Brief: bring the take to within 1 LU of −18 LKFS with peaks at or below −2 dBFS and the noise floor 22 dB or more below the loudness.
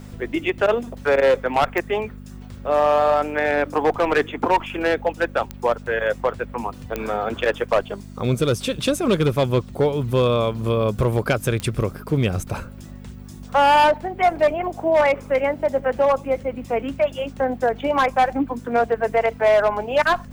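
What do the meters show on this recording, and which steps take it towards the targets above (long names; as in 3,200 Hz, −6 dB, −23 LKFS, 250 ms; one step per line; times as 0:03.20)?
number of clicks 4; mains hum 50 Hz; hum harmonics up to 250 Hz; level of the hum −36 dBFS; integrated loudness −21.0 LKFS; sample peak −8.0 dBFS; target loudness −18.0 LKFS
→ click removal
hum removal 50 Hz, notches 5
level +3 dB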